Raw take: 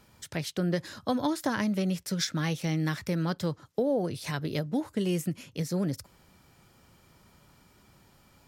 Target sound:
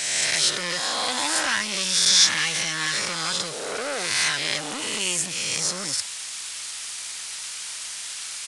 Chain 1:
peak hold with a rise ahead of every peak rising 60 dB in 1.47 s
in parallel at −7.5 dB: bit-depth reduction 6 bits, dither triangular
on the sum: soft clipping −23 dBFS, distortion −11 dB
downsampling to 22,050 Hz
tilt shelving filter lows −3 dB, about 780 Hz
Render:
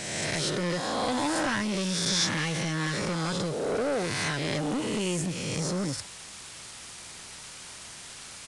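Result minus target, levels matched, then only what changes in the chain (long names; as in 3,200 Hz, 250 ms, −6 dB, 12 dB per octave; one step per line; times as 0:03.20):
1,000 Hz band +3.5 dB
change: tilt shelving filter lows −14.5 dB, about 780 Hz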